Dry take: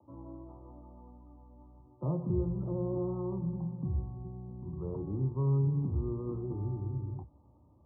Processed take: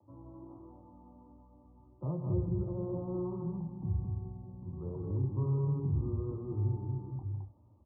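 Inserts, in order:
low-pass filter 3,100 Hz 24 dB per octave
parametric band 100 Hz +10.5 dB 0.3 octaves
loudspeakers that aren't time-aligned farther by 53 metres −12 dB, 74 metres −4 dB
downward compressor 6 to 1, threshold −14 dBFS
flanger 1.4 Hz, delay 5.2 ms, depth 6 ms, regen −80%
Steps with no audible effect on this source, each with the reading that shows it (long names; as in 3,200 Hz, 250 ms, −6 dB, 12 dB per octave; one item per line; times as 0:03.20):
low-pass filter 3,100 Hz: nothing at its input above 570 Hz
downward compressor, threshold −14 dBFS: peak of its input −16.0 dBFS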